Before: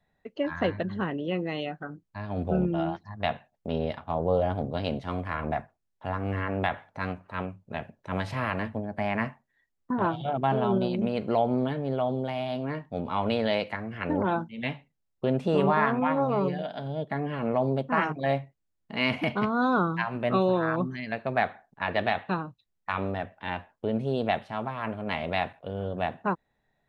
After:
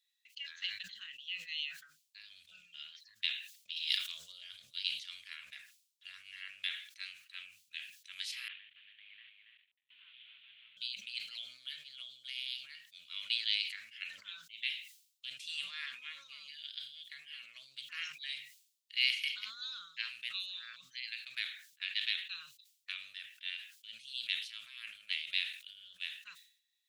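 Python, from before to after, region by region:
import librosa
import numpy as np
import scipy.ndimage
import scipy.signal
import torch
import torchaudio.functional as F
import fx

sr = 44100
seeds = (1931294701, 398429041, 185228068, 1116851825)

y = fx.chain(x, sr, fx.high_shelf(hz=3100.0, db=10.0),
    fx.env_flatten(amount_pct=70), at=(3.76, 4.32))
y = fx.chain(y, sr, fx.cvsd(bps=16000),
    fx.level_steps(step_db=20),
    fx.echo_single(ms=280, db=-5.5), at=(8.48, 10.77))
y = scipy.signal.sosfilt(scipy.signal.cheby2(4, 60, 910.0, 'highpass', fs=sr, output='sos'), y)
y = fx.sustainer(y, sr, db_per_s=100.0)
y = y * librosa.db_to_amplitude(6.5)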